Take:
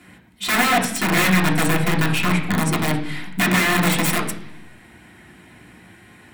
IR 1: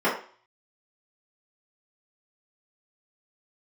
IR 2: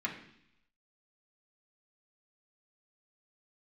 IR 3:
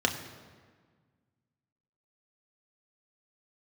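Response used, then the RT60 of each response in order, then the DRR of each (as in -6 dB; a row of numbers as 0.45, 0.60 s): 2; 0.45, 0.70, 1.6 s; -10.5, -4.0, 2.5 dB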